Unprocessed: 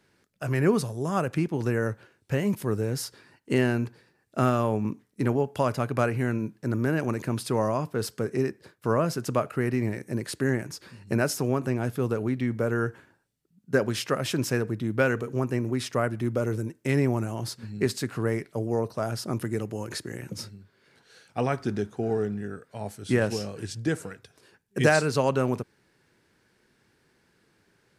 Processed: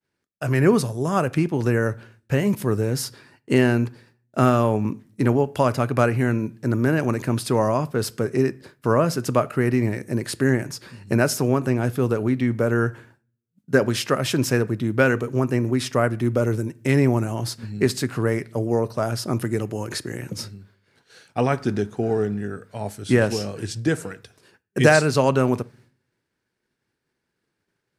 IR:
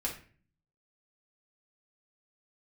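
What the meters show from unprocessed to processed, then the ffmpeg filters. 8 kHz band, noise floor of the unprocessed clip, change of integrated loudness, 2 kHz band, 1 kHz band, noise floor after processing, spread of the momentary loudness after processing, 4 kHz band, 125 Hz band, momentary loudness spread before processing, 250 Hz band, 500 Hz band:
+5.5 dB, -68 dBFS, +5.5 dB, +5.5 dB, +5.5 dB, -79 dBFS, 11 LU, +5.5 dB, +5.5 dB, 10 LU, +5.5 dB, +5.5 dB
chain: -filter_complex "[0:a]agate=range=0.0224:threshold=0.002:ratio=3:detection=peak,asplit=2[s0][s1];[1:a]atrim=start_sample=2205[s2];[s1][s2]afir=irnorm=-1:irlink=0,volume=0.119[s3];[s0][s3]amix=inputs=2:normalize=0,volume=1.68"

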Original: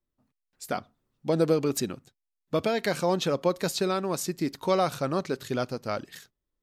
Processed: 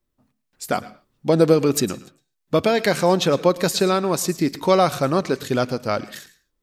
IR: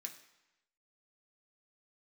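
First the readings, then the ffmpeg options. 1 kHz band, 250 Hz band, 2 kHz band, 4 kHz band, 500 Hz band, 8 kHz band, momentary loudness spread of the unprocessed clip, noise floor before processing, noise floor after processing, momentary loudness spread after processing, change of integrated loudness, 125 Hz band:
+8.0 dB, +8.0 dB, +8.0 dB, +8.0 dB, +8.0 dB, +8.0 dB, 10 LU, -84 dBFS, -76 dBFS, 10 LU, +8.0 dB, +8.0 dB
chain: -filter_complex "[0:a]asplit=2[s0][s1];[1:a]atrim=start_sample=2205,atrim=end_sample=6615,adelay=109[s2];[s1][s2]afir=irnorm=-1:irlink=0,volume=0.266[s3];[s0][s3]amix=inputs=2:normalize=0,volume=2.51"

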